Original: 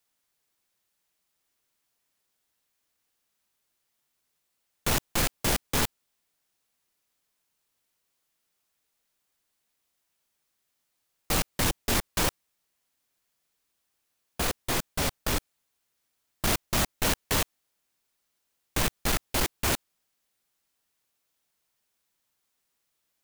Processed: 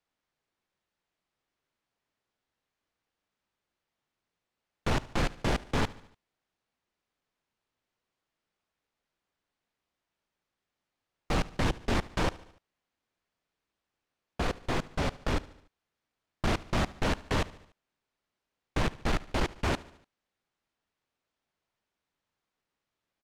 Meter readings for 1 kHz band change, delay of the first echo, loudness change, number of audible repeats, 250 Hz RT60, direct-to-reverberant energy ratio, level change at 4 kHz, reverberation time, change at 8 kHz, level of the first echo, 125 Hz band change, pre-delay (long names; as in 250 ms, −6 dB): −1.0 dB, 73 ms, −4.0 dB, 3, no reverb audible, no reverb audible, −7.0 dB, no reverb audible, −15.0 dB, −20.0 dB, +1.0 dB, no reverb audible